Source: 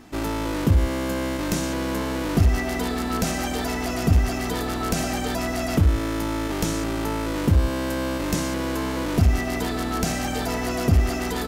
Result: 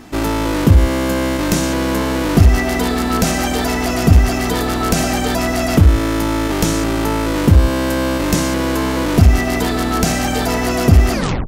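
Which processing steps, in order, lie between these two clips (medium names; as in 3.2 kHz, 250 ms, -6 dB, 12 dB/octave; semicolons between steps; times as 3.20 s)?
tape stop on the ending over 0.35 s; trim +8.5 dB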